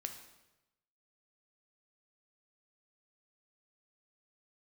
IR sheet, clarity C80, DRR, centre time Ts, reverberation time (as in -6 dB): 10.5 dB, 5.0 dB, 19 ms, 1.0 s